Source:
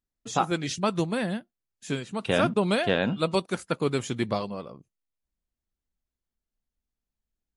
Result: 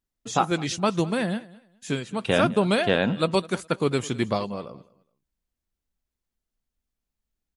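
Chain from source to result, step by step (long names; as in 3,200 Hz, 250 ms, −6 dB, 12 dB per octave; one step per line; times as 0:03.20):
repeating echo 208 ms, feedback 22%, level −21 dB
level +2.5 dB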